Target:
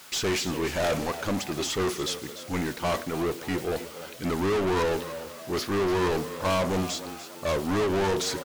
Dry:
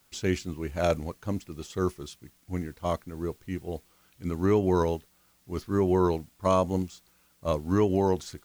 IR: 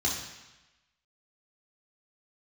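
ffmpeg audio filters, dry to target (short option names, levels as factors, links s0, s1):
-filter_complex "[0:a]asplit=2[s0][s1];[1:a]atrim=start_sample=2205,asetrate=83790,aresample=44100[s2];[s1][s2]afir=irnorm=-1:irlink=0,volume=0.0631[s3];[s0][s3]amix=inputs=2:normalize=0,asplit=2[s4][s5];[s5]highpass=f=720:p=1,volume=50.1,asoftclip=type=tanh:threshold=0.251[s6];[s4][s6]amix=inputs=2:normalize=0,lowpass=f=6800:p=1,volume=0.501,asplit=5[s7][s8][s9][s10][s11];[s8]adelay=294,afreqshift=75,volume=0.224[s12];[s9]adelay=588,afreqshift=150,volume=0.101[s13];[s10]adelay=882,afreqshift=225,volume=0.0452[s14];[s11]adelay=1176,afreqshift=300,volume=0.0204[s15];[s7][s12][s13][s14][s15]amix=inputs=5:normalize=0,volume=0.447"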